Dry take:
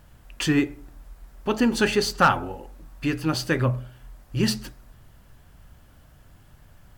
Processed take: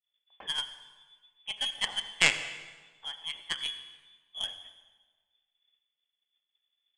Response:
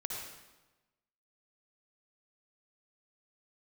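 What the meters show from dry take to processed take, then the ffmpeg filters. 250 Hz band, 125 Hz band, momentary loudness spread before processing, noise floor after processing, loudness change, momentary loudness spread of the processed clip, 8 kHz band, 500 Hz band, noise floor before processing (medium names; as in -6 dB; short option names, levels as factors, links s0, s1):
-29.5 dB, -26.0 dB, 13 LU, -85 dBFS, -7.5 dB, 22 LU, -4.0 dB, -21.5 dB, -53 dBFS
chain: -filter_complex "[0:a]lowpass=f=3000:t=q:w=0.5098,lowpass=f=3000:t=q:w=0.6013,lowpass=f=3000:t=q:w=0.9,lowpass=f=3000:t=q:w=2.563,afreqshift=-3500,aeval=exprs='0.631*(cos(1*acos(clip(val(0)/0.631,-1,1)))-cos(1*PI/2))+0.158*(cos(2*acos(clip(val(0)/0.631,-1,1)))-cos(2*PI/2))+0.178*(cos(3*acos(clip(val(0)/0.631,-1,1)))-cos(3*PI/2))+0.0355*(cos(4*acos(clip(val(0)/0.631,-1,1)))-cos(4*PI/2))':c=same,bandreject=f=105.1:t=h:w=4,bandreject=f=210.2:t=h:w=4,bandreject=f=315.3:t=h:w=4,bandreject=f=420.4:t=h:w=4,bandreject=f=525.5:t=h:w=4,bandreject=f=630.6:t=h:w=4,bandreject=f=735.7:t=h:w=4,bandreject=f=840.8:t=h:w=4,bandreject=f=945.9:t=h:w=4,bandreject=f=1051:t=h:w=4,bandreject=f=1156.1:t=h:w=4,bandreject=f=1261.2:t=h:w=4,bandreject=f=1366.3:t=h:w=4,bandreject=f=1471.4:t=h:w=4,bandreject=f=1576.5:t=h:w=4,bandreject=f=1681.6:t=h:w=4,bandreject=f=1786.7:t=h:w=4,bandreject=f=1891.8:t=h:w=4,bandreject=f=1996.9:t=h:w=4,bandreject=f=2102:t=h:w=4,bandreject=f=2207.1:t=h:w=4,bandreject=f=2312.2:t=h:w=4,bandreject=f=2417.3:t=h:w=4,bandreject=f=2522.4:t=h:w=4,agate=range=0.0224:threshold=0.00158:ratio=3:detection=peak,asplit=2[s0][s1];[1:a]atrim=start_sample=2205,asetrate=33957,aresample=44100[s2];[s1][s2]afir=irnorm=-1:irlink=0,volume=0.282[s3];[s0][s3]amix=inputs=2:normalize=0,volume=0.75"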